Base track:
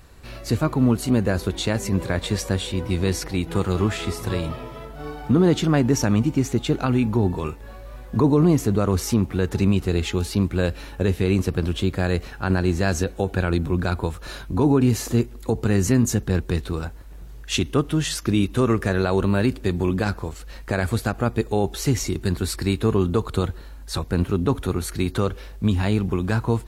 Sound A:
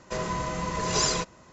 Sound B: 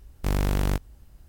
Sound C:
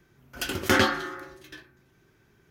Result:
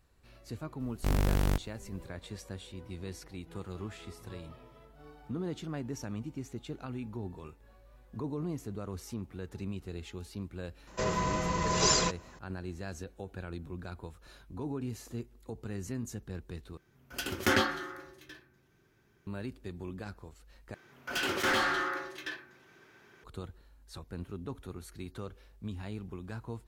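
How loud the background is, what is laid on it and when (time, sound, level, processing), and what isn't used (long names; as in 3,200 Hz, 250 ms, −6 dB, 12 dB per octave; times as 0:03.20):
base track −19.5 dB
0:00.80: mix in B −3.5 dB
0:10.87: mix in A −1 dB
0:16.77: overwrite with C −5.5 dB
0:20.74: overwrite with C −13.5 dB + mid-hump overdrive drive 29 dB, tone 3,200 Hz, clips at −7 dBFS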